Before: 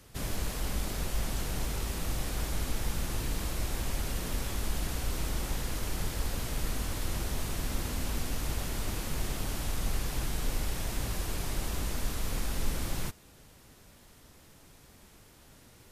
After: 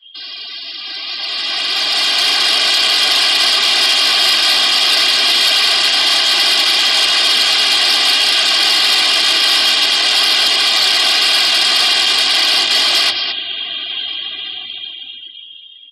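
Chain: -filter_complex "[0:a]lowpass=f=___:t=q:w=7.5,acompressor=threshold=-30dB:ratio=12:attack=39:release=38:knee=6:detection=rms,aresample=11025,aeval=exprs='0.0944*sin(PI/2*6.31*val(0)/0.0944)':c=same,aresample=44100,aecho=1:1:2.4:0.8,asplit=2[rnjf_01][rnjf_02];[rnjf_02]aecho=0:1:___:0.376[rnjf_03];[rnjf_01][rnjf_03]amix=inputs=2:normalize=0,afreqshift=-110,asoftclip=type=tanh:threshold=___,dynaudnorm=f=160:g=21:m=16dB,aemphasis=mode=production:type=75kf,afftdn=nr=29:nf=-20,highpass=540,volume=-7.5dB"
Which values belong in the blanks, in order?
3300, 215, -17dB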